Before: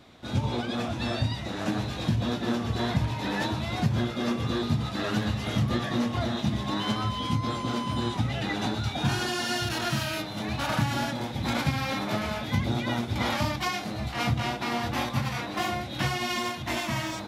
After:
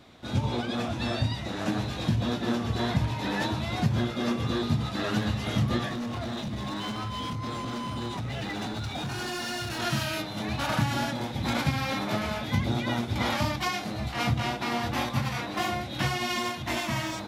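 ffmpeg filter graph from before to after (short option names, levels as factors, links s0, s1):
-filter_complex "[0:a]asettb=1/sr,asplit=3[s0][s1][s2];[s0]atrim=end=5.884[s3];[s1]atrim=start=5.88:end=9.79,asetpts=PTS-STARTPTS,afade=t=in:d=0.004:c=qsin,afade=t=out:st=3.906:d=0.004:c=qsin,bandreject=f=3200:w=23,acompressor=threshold=0.0447:ratio=6:attack=3.2:release=140:knee=1:detection=peak,asoftclip=type=hard:threshold=0.0355[s4];[s2]atrim=start=9.786[s5];[s3][s4]acrossfade=d=0.004:c1=hsin:c2=qsin[s6];[s6][s5]acrossfade=d=0.004:c1=qsin:c2=hsin"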